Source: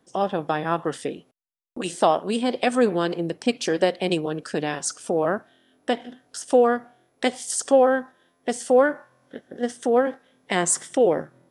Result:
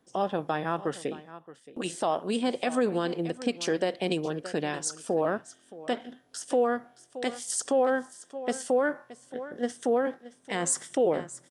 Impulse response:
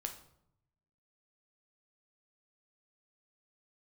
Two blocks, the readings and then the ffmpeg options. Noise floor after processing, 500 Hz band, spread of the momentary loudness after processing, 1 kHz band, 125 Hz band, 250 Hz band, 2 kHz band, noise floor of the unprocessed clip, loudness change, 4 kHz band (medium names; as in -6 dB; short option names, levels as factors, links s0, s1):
-62 dBFS, -6.5 dB, 14 LU, -6.5 dB, -4.5 dB, -5.5 dB, -5.5 dB, -68 dBFS, -6.0 dB, -5.5 dB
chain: -filter_complex "[0:a]asplit=2[s0][s1];[s1]aecho=0:1:622:0.133[s2];[s0][s2]amix=inputs=2:normalize=0,alimiter=limit=0.237:level=0:latency=1:release=62,volume=0.631"